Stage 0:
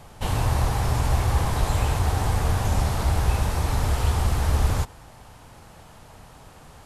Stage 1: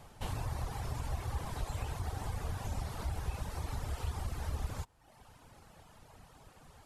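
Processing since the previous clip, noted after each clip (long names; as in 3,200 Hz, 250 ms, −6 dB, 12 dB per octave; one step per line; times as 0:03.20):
downward compressor 1.5 to 1, threshold −32 dBFS, peak gain reduction 6.5 dB
reverb reduction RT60 0.97 s
level −8 dB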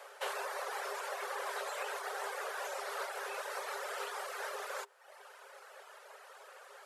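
Chebyshev high-pass with heavy ripple 390 Hz, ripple 9 dB
level +12 dB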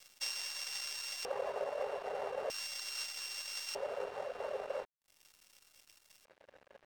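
samples sorted by size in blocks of 16 samples
auto-filter band-pass square 0.4 Hz 550–5,500 Hz
dead-zone distortion −59.5 dBFS
level +10 dB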